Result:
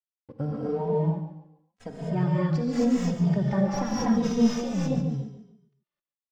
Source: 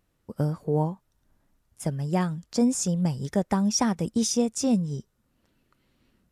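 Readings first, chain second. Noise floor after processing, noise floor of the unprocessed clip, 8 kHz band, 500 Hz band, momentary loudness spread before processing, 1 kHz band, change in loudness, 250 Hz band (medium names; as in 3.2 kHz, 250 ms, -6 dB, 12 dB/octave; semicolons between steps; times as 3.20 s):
under -85 dBFS, -72 dBFS, -13.0 dB, +1.0 dB, 10 LU, -1.0 dB, 0.0 dB, +1.0 dB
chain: tracing distortion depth 0.067 ms; in parallel at +1.5 dB: peak limiter -21.5 dBFS, peak gain reduction 11 dB; on the sum: crossover distortion -44 dBFS; distance through air 180 m; on a send: feedback delay 142 ms, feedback 33%, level -10.5 dB; on the sum: gated-style reverb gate 280 ms rising, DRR -4 dB; endless flanger 2.9 ms -0.85 Hz; trim -6.5 dB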